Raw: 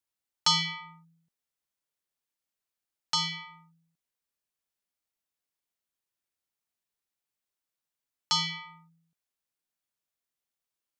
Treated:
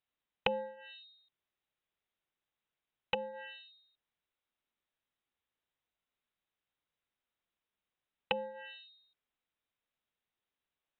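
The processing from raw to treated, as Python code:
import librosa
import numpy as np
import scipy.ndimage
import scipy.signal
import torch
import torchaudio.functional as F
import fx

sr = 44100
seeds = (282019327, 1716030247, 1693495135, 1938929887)

y = fx.freq_invert(x, sr, carrier_hz=3900)
y = fx.env_lowpass_down(y, sr, base_hz=400.0, full_db=-30.0)
y = y * 10.0 ** (2.5 / 20.0)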